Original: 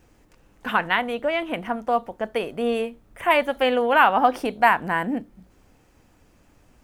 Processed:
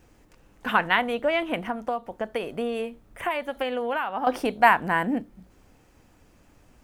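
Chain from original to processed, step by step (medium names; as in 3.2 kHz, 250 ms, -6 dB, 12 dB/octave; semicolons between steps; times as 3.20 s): 1.59–4.27 s: compression 16:1, threshold -24 dBFS, peak gain reduction 14.5 dB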